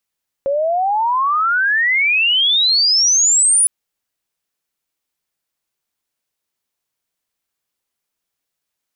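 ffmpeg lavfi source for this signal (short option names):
-f lavfi -i "aevalsrc='pow(10,(-14.5+5*t/3.21)/20)*sin(2*PI*540*3.21/log(10000/540)*(exp(log(10000/540)*t/3.21)-1))':d=3.21:s=44100"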